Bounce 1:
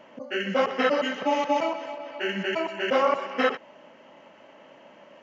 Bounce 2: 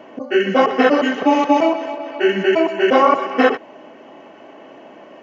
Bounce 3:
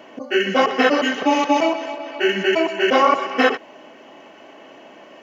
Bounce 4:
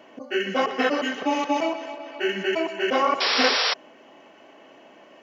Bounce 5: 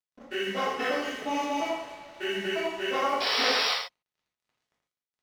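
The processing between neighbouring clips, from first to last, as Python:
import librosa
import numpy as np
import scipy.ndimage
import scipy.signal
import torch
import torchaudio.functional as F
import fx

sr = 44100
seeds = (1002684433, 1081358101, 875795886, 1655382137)

y1 = scipy.signal.sosfilt(scipy.signal.butter(2, 140.0, 'highpass', fs=sr, output='sos'), x)
y1 = fx.tilt_shelf(y1, sr, db=5.0, hz=940.0)
y1 = y1 + 0.47 * np.pad(y1, (int(2.7 * sr / 1000.0), 0))[:len(y1)]
y1 = y1 * 10.0 ** (9.0 / 20.0)
y2 = fx.high_shelf(y1, sr, hz=2000.0, db=10.5)
y2 = y2 * 10.0 ** (-4.0 / 20.0)
y3 = fx.spec_paint(y2, sr, seeds[0], shape='noise', start_s=3.2, length_s=0.54, low_hz=420.0, high_hz=5700.0, level_db=-16.0)
y3 = y3 * 10.0 ** (-6.5 / 20.0)
y4 = np.sign(y3) * np.maximum(np.abs(y3) - 10.0 ** (-41.0 / 20.0), 0.0)
y4 = y4 + 10.0 ** (-5.5 / 20.0) * np.pad(y4, (int(81 * sr / 1000.0), 0))[:len(y4)]
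y4 = fx.rev_gated(y4, sr, seeds[1], gate_ms=80, shape='flat', drr_db=-2.5)
y4 = y4 * 10.0 ** (-8.5 / 20.0)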